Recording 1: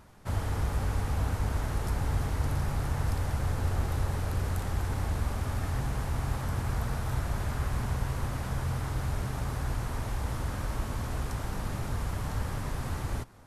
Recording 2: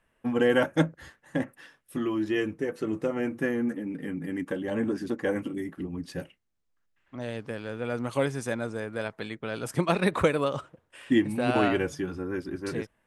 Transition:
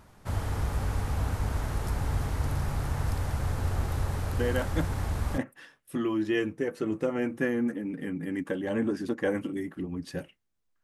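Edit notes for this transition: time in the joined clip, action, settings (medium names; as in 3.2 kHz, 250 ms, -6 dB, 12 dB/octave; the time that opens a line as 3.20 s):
recording 1
4.39 s: add recording 2 from 0.40 s 0.99 s -7.5 dB
5.38 s: go over to recording 2 from 1.39 s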